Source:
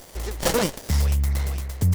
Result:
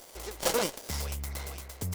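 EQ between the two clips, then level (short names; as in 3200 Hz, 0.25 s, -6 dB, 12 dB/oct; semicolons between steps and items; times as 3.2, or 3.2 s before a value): tone controls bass -11 dB, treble +1 dB; notch 1800 Hz, Q 14; -5.0 dB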